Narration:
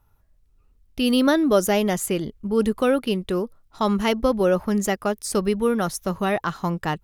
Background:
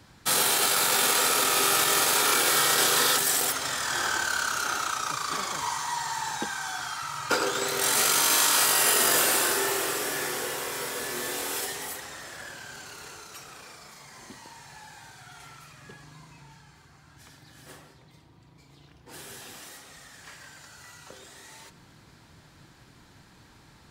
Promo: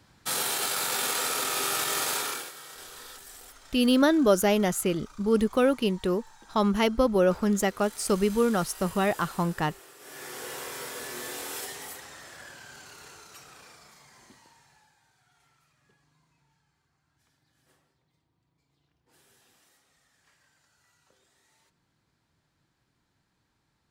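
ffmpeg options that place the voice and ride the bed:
ffmpeg -i stem1.wav -i stem2.wav -filter_complex "[0:a]adelay=2750,volume=-2.5dB[link_01];[1:a]volume=12.5dB,afade=type=out:start_time=2.12:duration=0.4:silence=0.133352,afade=type=in:start_time=9.98:duration=0.6:silence=0.125893,afade=type=out:start_time=13.66:duration=1.3:silence=0.177828[link_02];[link_01][link_02]amix=inputs=2:normalize=0" out.wav

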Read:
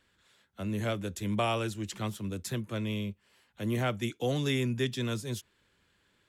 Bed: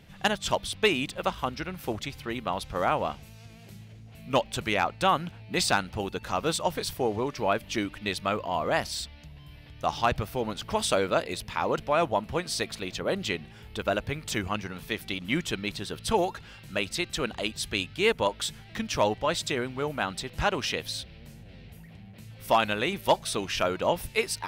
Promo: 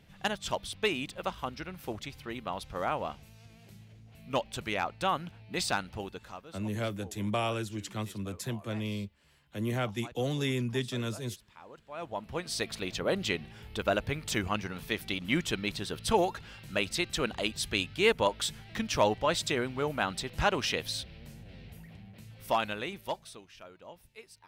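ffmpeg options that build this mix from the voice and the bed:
ffmpeg -i stem1.wav -i stem2.wav -filter_complex "[0:a]adelay=5950,volume=-1.5dB[link_01];[1:a]volume=16.5dB,afade=type=out:start_time=5.95:duration=0.52:silence=0.133352,afade=type=in:start_time=11.88:duration=0.94:silence=0.0749894,afade=type=out:start_time=21.78:duration=1.68:silence=0.0749894[link_02];[link_01][link_02]amix=inputs=2:normalize=0" out.wav

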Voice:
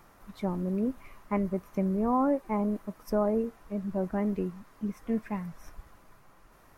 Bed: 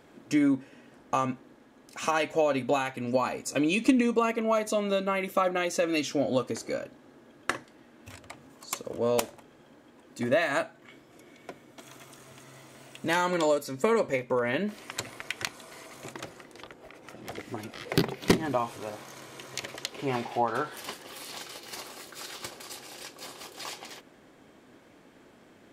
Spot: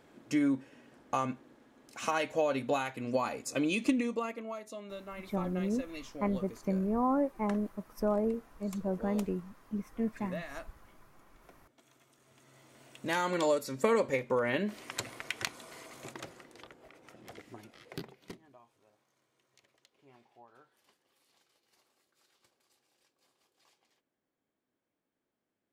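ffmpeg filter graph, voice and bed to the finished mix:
ffmpeg -i stem1.wav -i stem2.wav -filter_complex "[0:a]adelay=4900,volume=-3dB[link_01];[1:a]volume=9.5dB,afade=type=out:start_time=3.7:duration=0.88:silence=0.251189,afade=type=in:start_time=12.17:duration=1.48:silence=0.199526,afade=type=out:start_time=15.65:duration=2.76:silence=0.0375837[link_02];[link_01][link_02]amix=inputs=2:normalize=0" out.wav

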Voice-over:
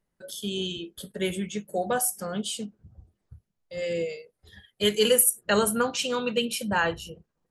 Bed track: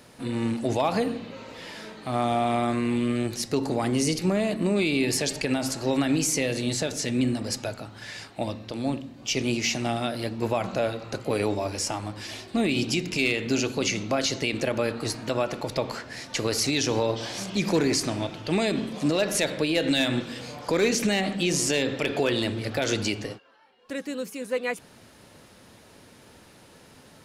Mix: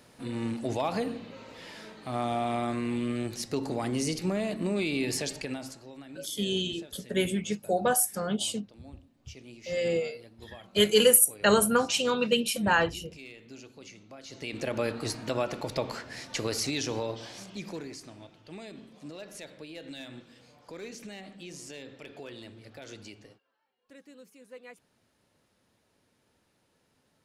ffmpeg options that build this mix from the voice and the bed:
ffmpeg -i stem1.wav -i stem2.wav -filter_complex "[0:a]adelay=5950,volume=1dB[link_01];[1:a]volume=13.5dB,afade=type=out:start_time=5.2:duration=0.68:silence=0.141254,afade=type=in:start_time=14.25:duration=0.57:silence=0.112202,afade=type=out:start_time=16.19:duration=1.74:silence=0.158489[link_02];[link_01][link_02]amix=inputs=2:normalize=0" out.wav

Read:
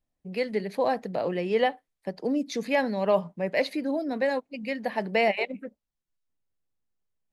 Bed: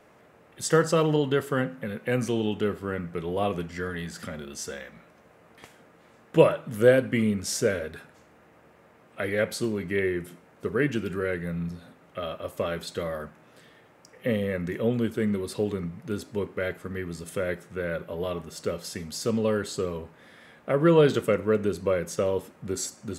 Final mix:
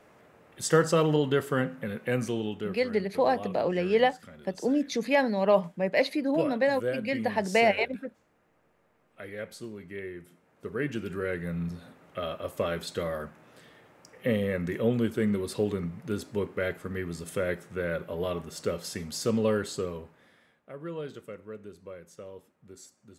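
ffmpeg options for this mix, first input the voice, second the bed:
ffmpeg -i stem1.wav -i stem2.wav -filter_complex "[0:a]adelay=2400,volume=1dB[link_01];[1:a]volume=11dB,afade=type=out:start_time=1.99:duration=0.89:silence=0.266073,afade=type=in:start_time=10.31:duration=1.43:silence=0.251189,afade=type=out:start_time=19.5:duration=1.11:silence=0.125893[link_02];[link_01][link_02]amix=inputs=2:normalize=0" out.wav

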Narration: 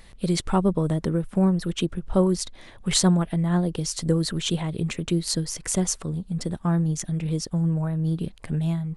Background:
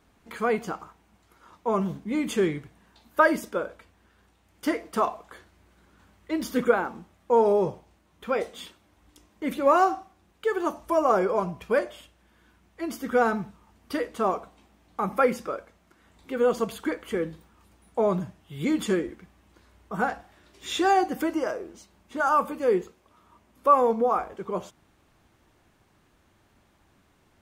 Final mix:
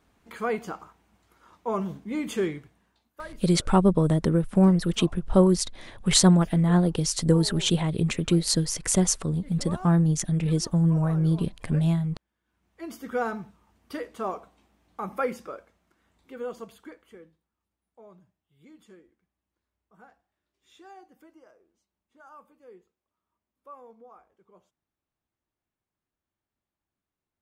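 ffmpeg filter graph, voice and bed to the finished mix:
ffmpeg -i stem1.wav -i stem2.wav -filter_complex "[0:a]adelay=3200,volume=2dB[link_01];[1:a]volume=12dB,afade=type=out:start_time=2.45:duration=0.68:silence=0.125893,afade=type=in:start_time=12.45:duration=0.42:silence=0.177828,afade=type=out:start_time=15.31:duration=2.09:silence=0.0841395[link_02];[link_01][link_02]amix=inputs=2:normalize=0" out.wav

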